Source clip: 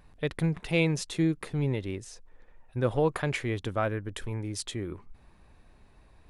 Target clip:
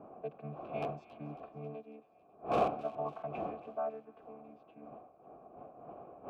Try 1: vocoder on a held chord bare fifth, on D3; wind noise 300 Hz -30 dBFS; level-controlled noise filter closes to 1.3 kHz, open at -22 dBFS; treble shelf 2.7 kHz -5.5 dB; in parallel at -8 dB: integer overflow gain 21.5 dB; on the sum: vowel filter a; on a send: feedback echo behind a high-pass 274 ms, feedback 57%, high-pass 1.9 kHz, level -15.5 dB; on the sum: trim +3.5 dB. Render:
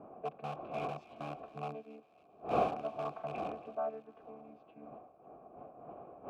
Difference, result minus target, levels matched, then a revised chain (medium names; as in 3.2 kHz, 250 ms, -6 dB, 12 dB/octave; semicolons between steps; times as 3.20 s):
integer overflow: distortion +8 dB
vocoder on a held chord bare fifth, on D3; wind noise 300 Hz -30 dBFS; level-controlled noise filter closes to 1.3 kHz, open at -22 dBFS; treble shelf 2.7 kHz -5.5 dB; in parallel at -8 dB: integer overflow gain 15 dB; on the sum: vowel filter a; on a send: feedback echo behind a high-pass 274 ms, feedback 57%, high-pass 1.9 kHz, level -15.5 dB; on the sum: trim +3.5 dB